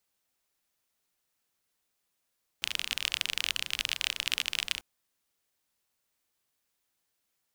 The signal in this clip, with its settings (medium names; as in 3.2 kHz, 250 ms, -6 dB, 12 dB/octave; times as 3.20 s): rain from filtered ticks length 2.19 s, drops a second 33, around 2.9 kHz, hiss -20 dB